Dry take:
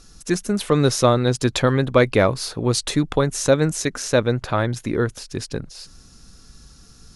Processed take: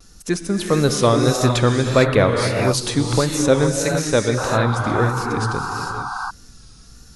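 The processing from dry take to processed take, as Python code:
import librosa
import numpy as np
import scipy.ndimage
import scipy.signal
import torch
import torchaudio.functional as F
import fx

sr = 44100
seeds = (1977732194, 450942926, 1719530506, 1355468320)

y = fx.rev_gated(x, sr, seeds[0], gate_ms=480, shape='rising', drr_db=2.0)
y = fx.vibrato(y, sr, rate_hz=1.6, depth_cents=68.0)
y = fx.spec_paint(y, sr, seeds[1], shape='noise', start_s=4.37, length_s=1.94, low_hz=720.0, high_hz=1600.0, level_db=-27.0)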